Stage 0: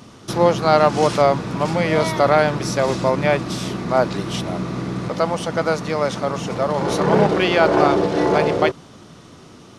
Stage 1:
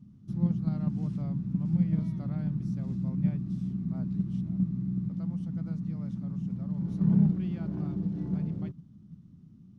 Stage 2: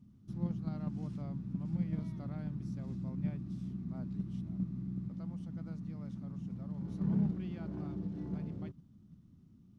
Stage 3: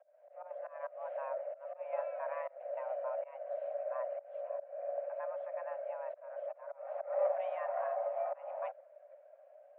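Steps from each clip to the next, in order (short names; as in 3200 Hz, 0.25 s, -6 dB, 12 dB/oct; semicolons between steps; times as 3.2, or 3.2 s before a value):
EQ curve 110 Hz 0 dB, 190 Hz +6 dB, 470 Hz -29 dB; in parallel at -2 dB: level quantiser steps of 20 dB; on the sum: gain -9 dB
bell 160 Hz -7.5 dB 0.92 oct; gain -2.5 dB
bin magnitudes rounded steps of 15 dB; auto swell 0.26 s; mistuned SSB +380 Hz 230–2100 Hz; gain +9.5 dB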